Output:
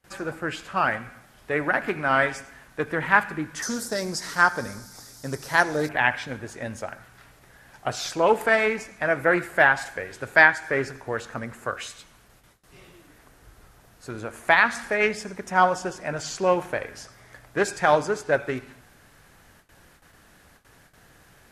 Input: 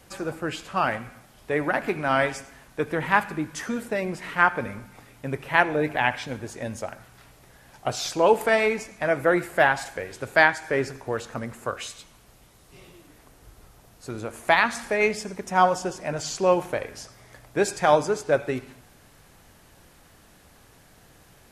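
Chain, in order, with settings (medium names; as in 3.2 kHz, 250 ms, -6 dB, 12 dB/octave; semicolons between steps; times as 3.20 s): 3.62–5.89 s: resonant high shelf 3.7 kHz +12.5 dB, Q 3; gate with hold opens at -44 dBFS; peaking EQ 1.6 kHz +6 dB 0.77 oct; loudspeaker Doppler distortion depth 0.14 ms; trim -1.5 dB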